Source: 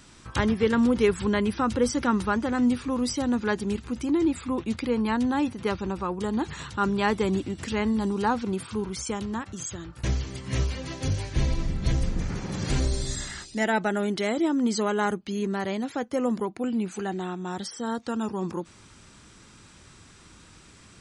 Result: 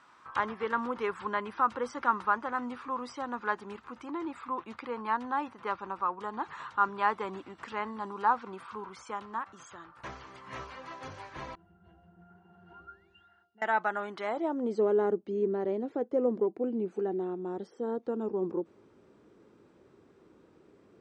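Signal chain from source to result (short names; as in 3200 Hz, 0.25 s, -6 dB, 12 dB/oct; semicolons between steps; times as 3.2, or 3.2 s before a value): 12.71–13.28 painted sound rise 900–3900 Hz -36 dBFS; 11.55–13.62 octave resonator F, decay 0.22 s; band-pass sweep 1100 Hz -> 420 Hz, 14.2–14.83; gain +3.5 dB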